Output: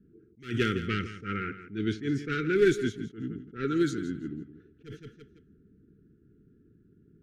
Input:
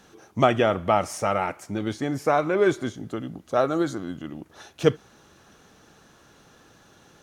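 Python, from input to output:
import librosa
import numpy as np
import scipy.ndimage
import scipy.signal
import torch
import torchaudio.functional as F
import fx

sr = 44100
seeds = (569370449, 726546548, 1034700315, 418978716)

p1 = fx.clip_asym(x, sr, top_db=-18.0, bottom_db=-10.5)
p2 = scipy.signal.sosfilt(scipy.signal.cheby1(4, 1.0, [430.0, 1400.0], 'bandstop', fs=sr, output='sos'), p1)
p3 = fx.env_lowpass(p2, sr, base_hz=330.0, full_db=-21.5)
p4 = p3 + fx.echo_feedback(p3, sr, ms=167, feedback_pct=24, wet_db=-13, dry=0)
y = fx.attack_slew(p4, sr, db_per_s=180.0)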